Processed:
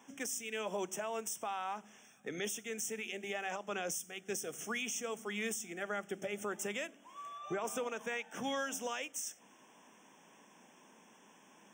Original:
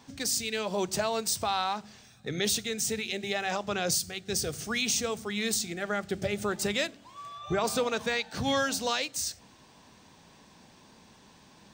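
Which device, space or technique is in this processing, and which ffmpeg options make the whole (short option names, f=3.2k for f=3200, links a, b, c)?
PA system with an anti-feedback notch: -af "highpass=f=190:w=0.5412,highpass=f=190:w=1.3066,asuperstop=centerf=4300:order=8:qfactor=2.1,equalizer=f=150:t=o:w=2:g=-3,alimiter=level_in=1dB:limit=-24dB:level=0:latency=1:release=320,volume=-1dB,volume=-3.5dB"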